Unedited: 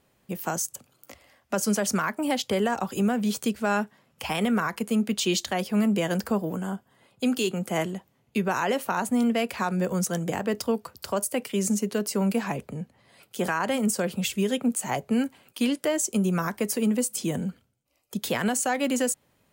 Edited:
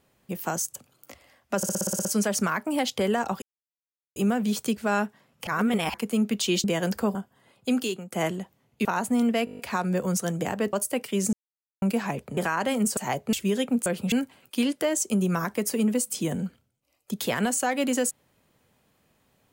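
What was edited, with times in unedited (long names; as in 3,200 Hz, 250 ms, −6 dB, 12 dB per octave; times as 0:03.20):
0:01.57: stutter 0.06 s, 9 plays
0:02.94: splice in silence 0.74 s
0:04.25–0:04.72: reverse
0:05.42–0:05.92: remove
0:06.43–0:06.70: remove
0:07.32–0:07.67: fade out linear, to −21.5 dB
0:08.40–0:08.86: remove
0:09.46: stutter 0.02 s, 8 plays
0:10.60–0:11.14: remove
0:11.74–0:12.23: silence
0:12.78–0:13.40: remove
0:14.00–0:14.26: swap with 0:14.79–0:15.15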